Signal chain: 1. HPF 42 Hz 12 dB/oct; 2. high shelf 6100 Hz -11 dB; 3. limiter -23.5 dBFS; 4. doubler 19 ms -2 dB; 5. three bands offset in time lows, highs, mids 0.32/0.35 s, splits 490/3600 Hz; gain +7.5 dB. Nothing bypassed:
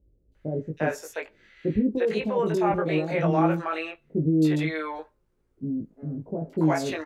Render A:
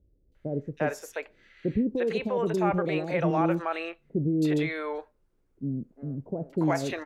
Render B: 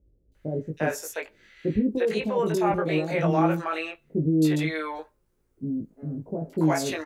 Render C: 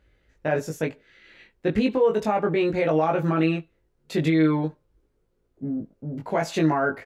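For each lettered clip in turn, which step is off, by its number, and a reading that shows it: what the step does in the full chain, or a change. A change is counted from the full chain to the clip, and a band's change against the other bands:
4, loudness change -3.0 LU; 2, 4 kHz band +2.5 dB; 5, echo-to-direct 13.5 dB to none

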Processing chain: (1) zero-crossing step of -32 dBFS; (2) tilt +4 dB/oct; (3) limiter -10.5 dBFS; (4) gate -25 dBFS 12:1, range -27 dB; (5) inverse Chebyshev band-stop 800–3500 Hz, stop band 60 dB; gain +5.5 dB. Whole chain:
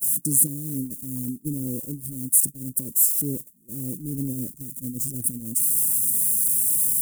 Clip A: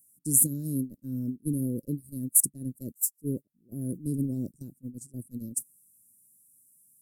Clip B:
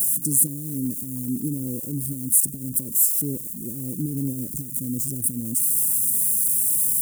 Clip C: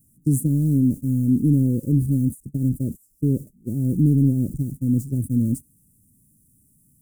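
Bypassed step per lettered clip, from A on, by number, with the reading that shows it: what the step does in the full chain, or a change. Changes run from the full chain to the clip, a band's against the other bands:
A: 1, distortion -17 dB; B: 4, momentary loudness spread change -3 LU; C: 2, 8 kHz band -30.5 dB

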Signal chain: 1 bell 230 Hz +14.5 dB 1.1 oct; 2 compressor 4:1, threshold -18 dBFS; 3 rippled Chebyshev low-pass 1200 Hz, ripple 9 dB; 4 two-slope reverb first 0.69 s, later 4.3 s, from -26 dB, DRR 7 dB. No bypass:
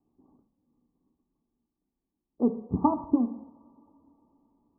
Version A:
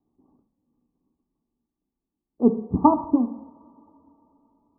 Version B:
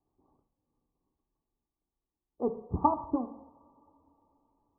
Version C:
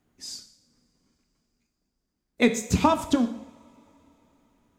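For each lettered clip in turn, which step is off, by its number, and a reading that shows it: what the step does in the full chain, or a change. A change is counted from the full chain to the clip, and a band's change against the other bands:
2, 125 Hz band -3.0 dB; 1, 250 Hz band -7.5 dB; 3, 250 Hz band -5.0 dB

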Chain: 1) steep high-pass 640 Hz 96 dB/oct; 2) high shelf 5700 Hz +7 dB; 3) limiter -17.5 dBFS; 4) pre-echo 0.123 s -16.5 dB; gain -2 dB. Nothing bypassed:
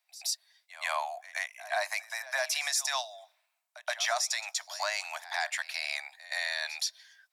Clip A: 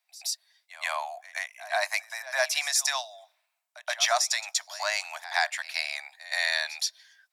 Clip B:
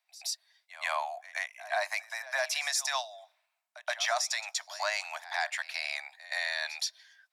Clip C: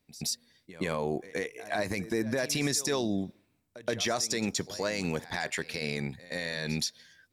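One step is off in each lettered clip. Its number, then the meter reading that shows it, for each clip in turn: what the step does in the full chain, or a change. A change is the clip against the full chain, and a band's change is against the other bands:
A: 3, mean gain reduction 2.0 dB; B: 2, 8 kHz band -2.0 dB; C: 1, 500 Hz band +9.5 dB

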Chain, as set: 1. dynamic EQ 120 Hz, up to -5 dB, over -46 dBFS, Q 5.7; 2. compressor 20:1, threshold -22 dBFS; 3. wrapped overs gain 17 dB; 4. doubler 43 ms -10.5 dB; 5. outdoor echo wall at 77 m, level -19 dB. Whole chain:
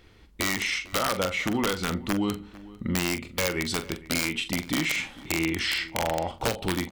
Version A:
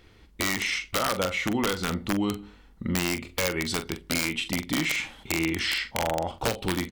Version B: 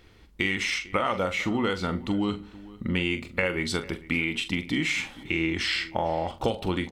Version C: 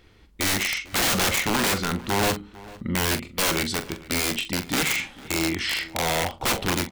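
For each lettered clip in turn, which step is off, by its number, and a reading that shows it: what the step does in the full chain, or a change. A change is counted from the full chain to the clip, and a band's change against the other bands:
5, echo-to-direct -20.5 dB to none; 3, distortion -4 dB; 2, mean gain reduction 3.5 dB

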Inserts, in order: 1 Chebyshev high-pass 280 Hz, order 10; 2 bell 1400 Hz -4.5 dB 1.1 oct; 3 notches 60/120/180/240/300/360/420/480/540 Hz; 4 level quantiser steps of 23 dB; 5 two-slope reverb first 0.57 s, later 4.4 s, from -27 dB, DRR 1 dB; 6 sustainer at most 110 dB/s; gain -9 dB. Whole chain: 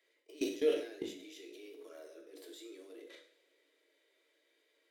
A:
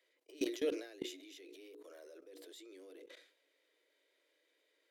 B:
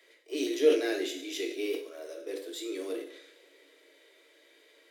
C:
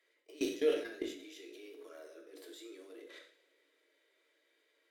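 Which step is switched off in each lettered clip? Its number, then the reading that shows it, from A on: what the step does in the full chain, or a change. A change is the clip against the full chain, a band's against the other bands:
5, 500 Hz band -3.5 dB; 4, momentary loudness spread change -6 LU; 2, 2 kHz band +2.5 dB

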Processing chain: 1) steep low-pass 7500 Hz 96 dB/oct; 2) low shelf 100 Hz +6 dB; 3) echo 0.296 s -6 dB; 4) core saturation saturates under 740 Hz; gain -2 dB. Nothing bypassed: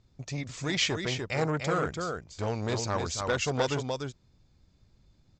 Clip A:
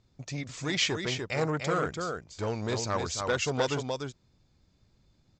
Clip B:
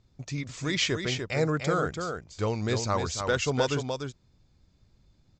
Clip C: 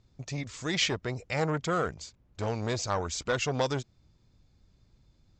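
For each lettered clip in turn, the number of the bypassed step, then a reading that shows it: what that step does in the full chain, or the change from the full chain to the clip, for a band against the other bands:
2, 125 Hz band -1.5 dB; 4, crest factor change -1.5 dB; 3, momentary loudness spread change +1 LU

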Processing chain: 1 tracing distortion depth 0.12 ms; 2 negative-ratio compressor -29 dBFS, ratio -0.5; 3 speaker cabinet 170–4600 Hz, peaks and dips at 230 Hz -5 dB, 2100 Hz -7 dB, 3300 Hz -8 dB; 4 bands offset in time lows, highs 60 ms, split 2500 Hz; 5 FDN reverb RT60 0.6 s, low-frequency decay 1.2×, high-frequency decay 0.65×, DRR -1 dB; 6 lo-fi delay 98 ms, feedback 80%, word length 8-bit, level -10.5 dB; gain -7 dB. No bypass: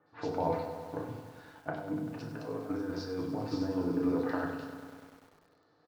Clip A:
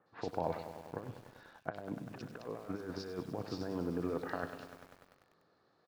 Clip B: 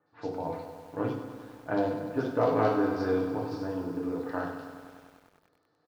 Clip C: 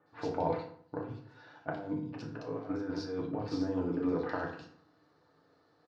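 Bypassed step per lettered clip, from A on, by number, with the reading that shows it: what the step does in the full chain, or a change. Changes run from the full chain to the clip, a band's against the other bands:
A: 5, crest factor change +5.5 dB; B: 2, 4 kHz band -4.5 dB; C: 6, momentary loudness spread change -2 LU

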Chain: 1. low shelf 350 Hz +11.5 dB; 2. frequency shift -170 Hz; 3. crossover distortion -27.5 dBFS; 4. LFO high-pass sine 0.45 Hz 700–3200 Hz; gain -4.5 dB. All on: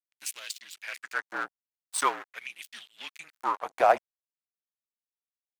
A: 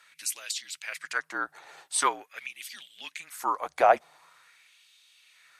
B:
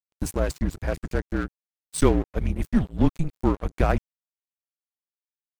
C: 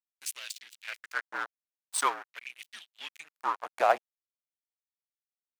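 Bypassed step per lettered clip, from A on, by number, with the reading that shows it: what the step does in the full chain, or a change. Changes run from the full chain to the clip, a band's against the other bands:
3, distortion -14 dB; 4, 250 Hz band +26.5 dB; 1, 250 Hz band -4.0 dB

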